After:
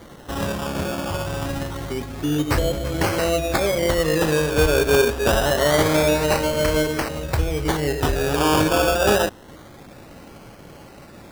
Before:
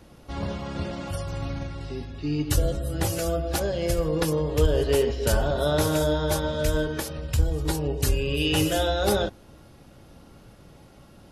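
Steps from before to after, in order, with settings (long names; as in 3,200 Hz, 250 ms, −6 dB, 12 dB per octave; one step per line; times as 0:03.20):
low-shelf EQ 160 Hz −9.5 dB
in parallel at −1.5 dB: downward compressor, threshold −36 dBFS, peak gain reduction 15.5 dB
on the sum: sample-and-hold swept by an LFO 17×, swing 60% 0.26 Hz
level +5.5 dB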